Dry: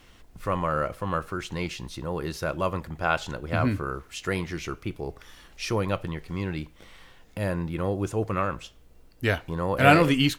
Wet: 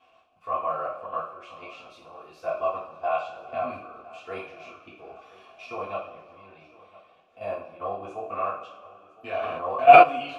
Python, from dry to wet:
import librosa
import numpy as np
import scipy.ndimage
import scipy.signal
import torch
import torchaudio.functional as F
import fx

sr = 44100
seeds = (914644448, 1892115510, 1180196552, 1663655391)

y = fx.high_shelf(x, sr, hz=10000.0, db=11.0, at=(1.91, 2.45))
y = fx.level_steps(y, sr, step_db=14)
y = fx.leveller(y, sr, passes=2, at=(4.97, 5.65))
y = fx.vowel_filter(y, sr, vowel='a')
y = fx.echo_feedback(y, sr, ms=1010, feedback_pct=46, wet_db=-20)
y = fx.rev_double_slope(y, sr, seeds[0], early_s=0.43, late_s=2.3, knee_db=-18, drr_db=-9.0)
y = fx.sustainer(y, sr, db_per_s=29.0, at=(9.34, 10.02), fade=0.02)
y = y * 10.0 ** (2.0 / 20.0)